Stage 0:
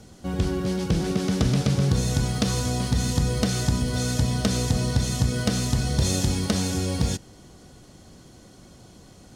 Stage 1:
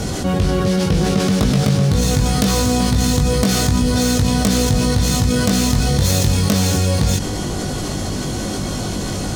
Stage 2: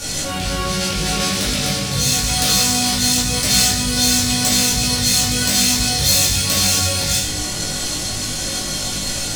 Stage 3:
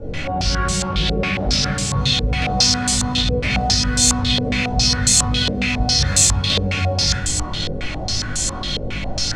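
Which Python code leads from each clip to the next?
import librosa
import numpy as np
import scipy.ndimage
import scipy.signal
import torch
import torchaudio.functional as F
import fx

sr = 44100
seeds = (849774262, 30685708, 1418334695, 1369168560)

y1 = fx.self_delay(x, sr, depth_ms=0.13)
y1 = fx.doubler(y1, sr, ms=20.0, db=-4.0)
y1 = fx.env_flatten(y1, sr, amount_pct=70)
y1 = y1 * 10.0 ** (3.5 / 20.0)
y2 = fx.tilt_shelf(y1, sr, db=-9.5, hz=1400.0)
y2 = fx.room_shoebox(y2, sr, seeds[0], volume_m3=140.0, walls='mixed', distance_m=2.4)
y2 = y2 * 10.0 ** (-8.5 / 20.0)
y3 = fx.low_shelf(y2, sr, hz=140.0, db=11.0)
y3 = fx.filter_held_lowpass(y3, sr, hz=7.3, low_hz=480.0, high_hz=7800.0)
y3 = y3 * 10.0 ** (-4.0 / 20.0)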